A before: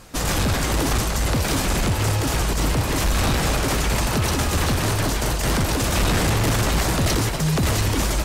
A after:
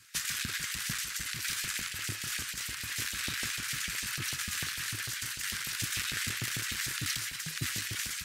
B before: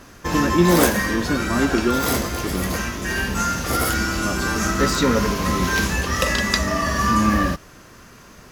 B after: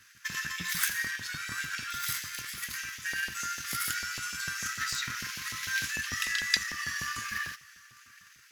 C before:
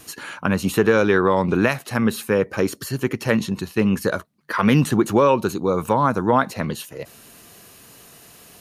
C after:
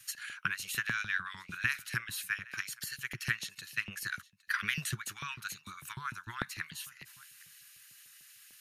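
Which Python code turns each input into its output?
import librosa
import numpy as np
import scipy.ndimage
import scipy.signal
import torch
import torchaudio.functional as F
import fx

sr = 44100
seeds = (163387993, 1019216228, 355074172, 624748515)

p1 = scipy.signal.sosfilt(scipy.signal.cheby1(3, 1.0, [120.0, 1600.0], 'bandstop', fs=sr, output='sos'), x)
p2 = fx.low_shelf(p1, sr, hz=190.0, db=9.5)
p3 = p2 + fx.echo_single(p2, sr, ms=812, db=-23.0, dry=0)
p4 = fx.transient(p3, sr, attack_db=7, sustain_db=3)
p5 = fx.filter_lfo_highpass(p4, sr, shape='saw_up', hz=6.7, low_hz=200.0, high_hz=2800.0, q=1.1)
y = p5 * librosa.db_to_amplitude(-9.0)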